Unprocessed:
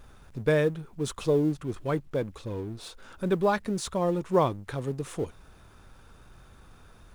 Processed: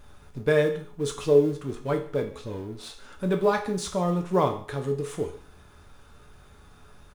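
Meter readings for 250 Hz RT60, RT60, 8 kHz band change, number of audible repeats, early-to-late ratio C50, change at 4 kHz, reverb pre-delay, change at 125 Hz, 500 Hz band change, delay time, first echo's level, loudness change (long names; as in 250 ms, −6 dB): 0.45 s, 0.50 s, +1.5 dB, 1, 10.0 dB, +2.0 dB, 5 ms, +0.5 dB, +3.0 dB, 145 ms, −21.5 dB, +2.5 dB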